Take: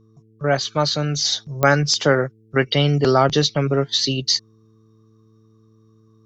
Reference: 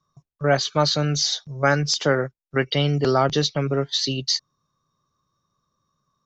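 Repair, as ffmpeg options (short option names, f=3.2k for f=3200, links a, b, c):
-af "adeclick=t=4,bandreject=f=110.1:t=h:w=4,bandreject=f=220.2:t=h:w=4,bandreject=f=330.3:t=h:w=4,bandreject=f=440.4:t=h:w=4,asetnsamples=n=441:p=0,asendcmd='1.25 volume volume -3.5dB',volume=0dB"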